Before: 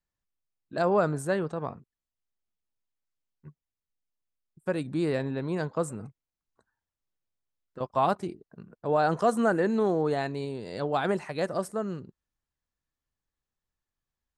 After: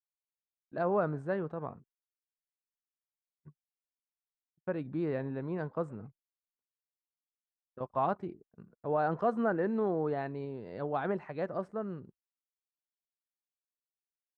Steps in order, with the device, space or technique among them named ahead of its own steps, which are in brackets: hearing-loss simulation (LPF 1900 Hz 12 dB/oct; expander -44 dBFS); gain -5.5 dB

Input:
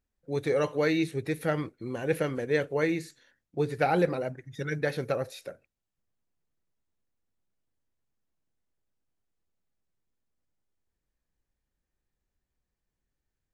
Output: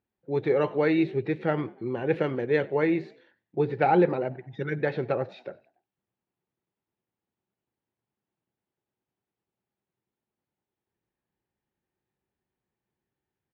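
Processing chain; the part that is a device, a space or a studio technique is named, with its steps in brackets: 2.15–2.78 high shelf 7000 Hz +10 dB; frequency-shifting delay pedal into a guitar cabinet (frequency-shifting echo 95 ms, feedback 45%, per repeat +57 Hz, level -24 dB; speaker cabinet 110–3500 Hz, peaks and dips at 120 Hz +5 dB, 200 Hz +4 dB, 370 Hz +8 dB, 850 Hz +7 dB)

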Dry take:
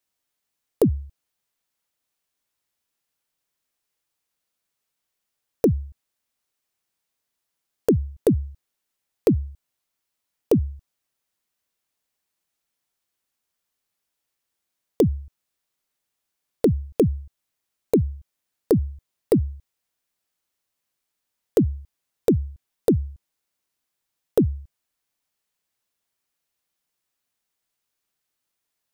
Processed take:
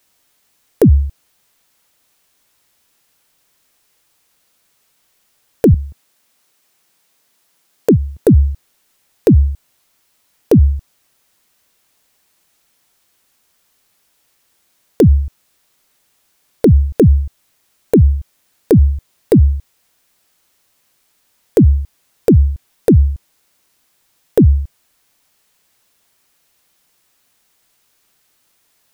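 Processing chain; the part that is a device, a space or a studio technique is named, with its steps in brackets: loud club master (compressor 2:1, threshold -20 dBFS, peak gain reduction 4 dB; hard clip -11.5 dBFS, distortion -26 dB; maximiser +22 dB); 5.74–8.23 HPF 120 Hz 12 dB/oct; gain -2.5 dB

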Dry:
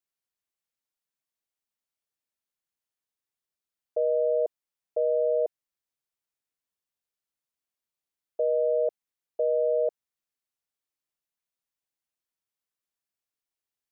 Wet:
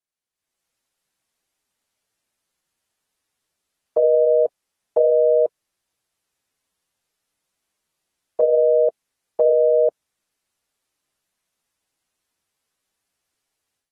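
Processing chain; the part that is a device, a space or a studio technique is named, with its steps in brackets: low-bitrate web radio (AGC gain up to 14 dB; limiter -8 dBFS, peak gain reduction 3.5 dB; gain -1.5 dB; AAC 32 kbps 44100 Hz)

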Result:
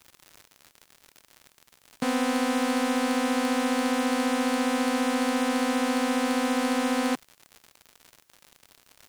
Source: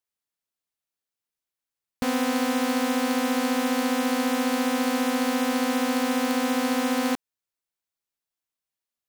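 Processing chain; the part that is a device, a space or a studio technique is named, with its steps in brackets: elliptic band-pass 140–9200 Hz; record under a worn stylus (tracing distortion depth 0.029 ms; crackle 110/s -35 dBFS; white noise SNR 41 dB)

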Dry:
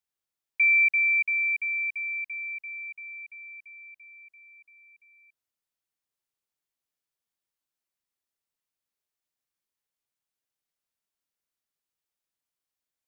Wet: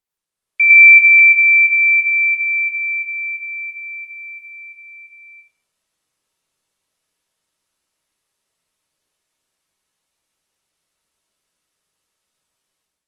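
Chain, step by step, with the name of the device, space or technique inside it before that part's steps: speakerphone in a meeting room (reverb RT60 0.45 s, pre-delay 96 ms, DRR -4.5 dB; AGC gain up to 9.5 dB; gain +1.5 dB; Opus 32 kbps 48000 Hz)

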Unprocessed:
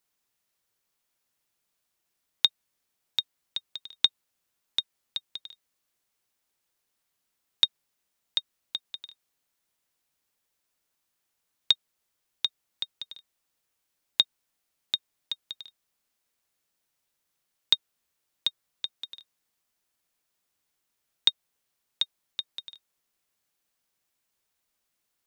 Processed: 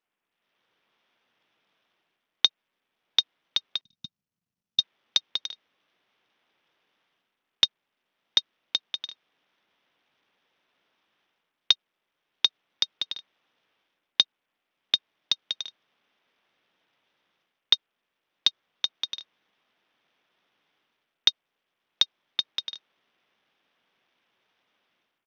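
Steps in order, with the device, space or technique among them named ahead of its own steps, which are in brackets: 3.81–4.79 inverse Chebyshev band-stop 380–3400 Hz, stop band 40 dB; Bluetooth headset (HPF 180 Hz 12 dB/oct; AGC gain up to 13 dB; downsampling 8000 Hz; SBC 64 kbps 48000 Hz)

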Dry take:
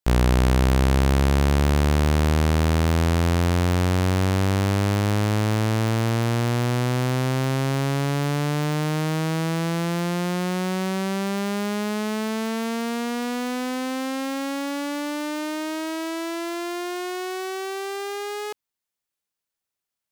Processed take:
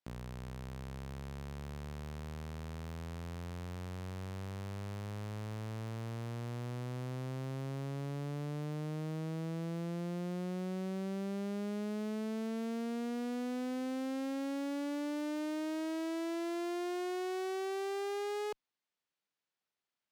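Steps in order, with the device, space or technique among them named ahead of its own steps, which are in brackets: valve radio (BPF 130–4500 Hz; tube stage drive 33 dB, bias 0.2; core saturation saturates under 240 Hz); gain -1 dB

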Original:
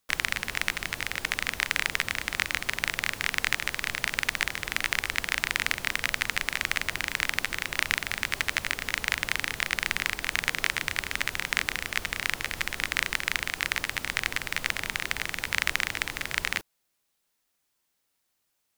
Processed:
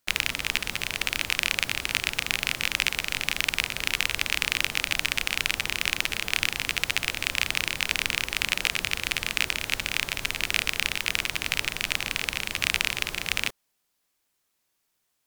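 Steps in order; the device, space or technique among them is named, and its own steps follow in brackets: nightcore (varispeed +23%); gain +2 dB

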